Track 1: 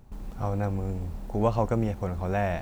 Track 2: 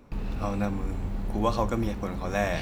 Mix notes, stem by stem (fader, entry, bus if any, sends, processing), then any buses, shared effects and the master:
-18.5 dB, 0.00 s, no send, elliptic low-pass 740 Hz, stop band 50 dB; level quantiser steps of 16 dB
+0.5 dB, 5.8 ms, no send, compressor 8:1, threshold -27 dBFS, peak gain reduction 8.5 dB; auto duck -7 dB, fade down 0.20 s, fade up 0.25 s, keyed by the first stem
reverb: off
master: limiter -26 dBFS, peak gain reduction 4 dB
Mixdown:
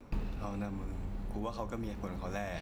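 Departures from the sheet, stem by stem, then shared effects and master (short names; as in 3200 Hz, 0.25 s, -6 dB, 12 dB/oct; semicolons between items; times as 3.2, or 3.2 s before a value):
stem 2: polarity flipped; master: missing limiter -26 dBFS, peak gain reduction 4 dB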